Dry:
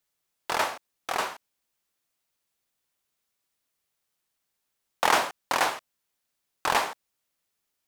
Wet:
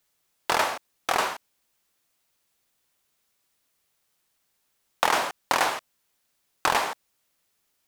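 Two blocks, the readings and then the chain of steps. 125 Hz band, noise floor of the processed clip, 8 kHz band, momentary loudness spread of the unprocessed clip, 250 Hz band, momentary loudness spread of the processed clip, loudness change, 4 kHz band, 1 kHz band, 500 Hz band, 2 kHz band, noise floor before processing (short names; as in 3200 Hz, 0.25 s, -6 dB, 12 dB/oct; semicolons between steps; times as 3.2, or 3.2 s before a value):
+2.0 dB, -74 dBFS, +1.5 dB, 12 LU, +1.5 dB, 12 LU, +1.5 dB, +1.5 dB, +1.5 dB, +1.5 dB, +1.5 dB, -81 dBFS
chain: compressor 5:1, threshold -26 dBFS, peak gain reduction 9.5 dB; gain +7 dB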